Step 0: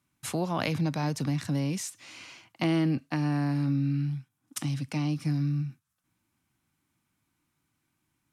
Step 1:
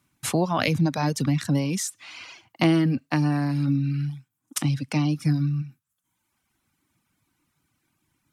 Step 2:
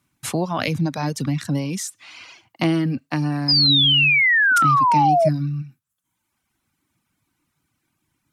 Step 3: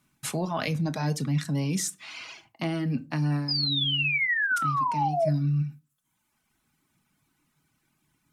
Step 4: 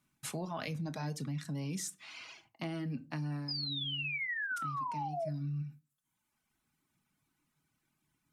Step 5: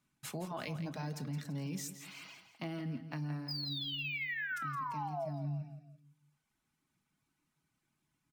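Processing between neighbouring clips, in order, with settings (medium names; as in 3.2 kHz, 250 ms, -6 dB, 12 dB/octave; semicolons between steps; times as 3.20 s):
reverb removal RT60 1.1 s; trim +7.5 dB
painted sound fall, 3.48–5.29 s, 610–5100 Hz -16 dBFS
reverse; compression 6:1, threshold -26 dBFS, peak gain reduction 12.5 dB; reverse; reverberation RT60 0.30 s, pre-delay 5 ms, DRR 7.5 dB
compression, threshold -26 dBFS, peak gain reduction 5.5 dB; trim -8 dB
on a send: feedback delay 168 ms, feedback 43%, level -11 dB; on the sum: decimation joined by straight lines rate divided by 2×; trim -2 dB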